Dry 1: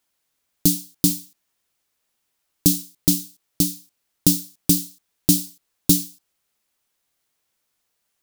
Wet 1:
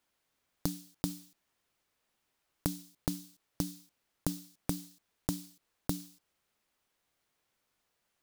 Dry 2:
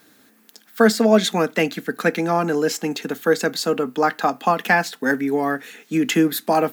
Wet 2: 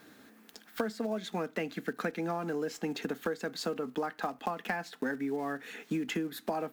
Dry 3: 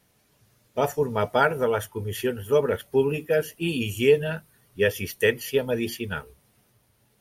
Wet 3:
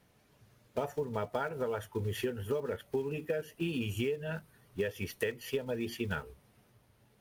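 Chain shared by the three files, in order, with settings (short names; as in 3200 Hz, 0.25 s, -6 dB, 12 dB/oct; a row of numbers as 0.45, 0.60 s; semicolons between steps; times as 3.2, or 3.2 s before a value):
block floating point 5-bit; high shelf 4200 Hz -9.5 dB; compressor 20:1, threshold -30 dBFS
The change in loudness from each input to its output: -19.0, -15.5, -11.0 LU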